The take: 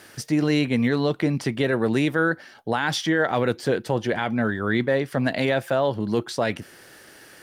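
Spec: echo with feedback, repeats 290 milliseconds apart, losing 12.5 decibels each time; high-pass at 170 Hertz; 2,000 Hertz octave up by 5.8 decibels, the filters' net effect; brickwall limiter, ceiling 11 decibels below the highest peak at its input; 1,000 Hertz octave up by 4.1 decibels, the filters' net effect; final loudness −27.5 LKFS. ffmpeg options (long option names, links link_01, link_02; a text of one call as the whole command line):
ffmpeg -i in.wav -af "highpass=170,equalizer=frequency=1000:width_type=o:gain=4,equalizer=frequency=2000:width_type=o:gain=6,alimiter=limit=-17dB:level=0:latency=1,aecho=1:1:290|580|870:0.237|0.0569|0.0137" out.wav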